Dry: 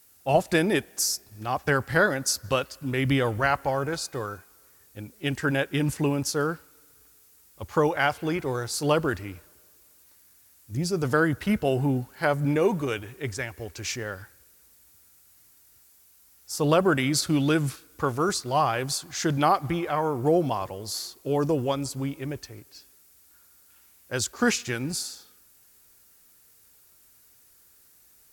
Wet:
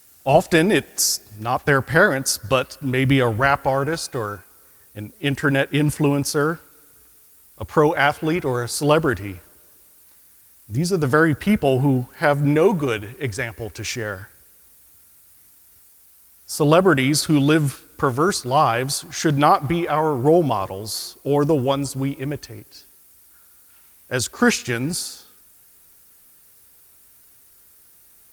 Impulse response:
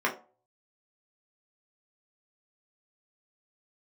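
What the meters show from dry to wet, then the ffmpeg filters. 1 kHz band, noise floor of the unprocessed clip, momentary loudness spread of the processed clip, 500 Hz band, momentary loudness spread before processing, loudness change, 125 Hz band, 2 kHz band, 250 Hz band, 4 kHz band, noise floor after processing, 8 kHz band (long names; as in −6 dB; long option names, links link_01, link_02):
+6.5 dB, −58 dBFS, 12 LU, +6.5 dB, 12 LU, +6.0 dB, +6.5 dB, +6.0 dB, +6.5 dB, +5.0 dB, −52 dBFS, +5.0 dB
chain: -af "volume=6.5dB" -ar 48000 -c:a libopus -b:a 48k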